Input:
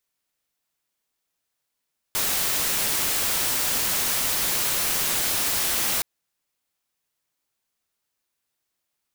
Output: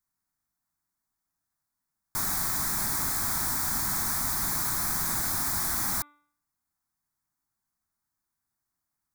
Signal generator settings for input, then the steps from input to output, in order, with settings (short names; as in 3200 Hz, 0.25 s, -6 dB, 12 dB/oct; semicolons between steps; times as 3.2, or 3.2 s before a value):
noise white, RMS -24 dBFS 3.87 s
tilt shelf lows +4 dB; fixed phaser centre 1200 Hz, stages 4; de-hum 292.7 Hz, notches 13